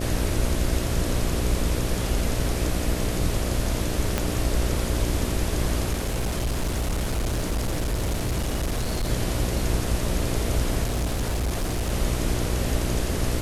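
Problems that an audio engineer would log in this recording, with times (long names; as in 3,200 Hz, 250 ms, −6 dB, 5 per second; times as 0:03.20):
mains buzz 60 Hz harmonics 11 −29 dBFS
0:04.18: click −8 dBFS
0:05.92–0:09.10: clipping −21.5 dBFS
0:10.83–0:11.93: clipping −21.5 dBFS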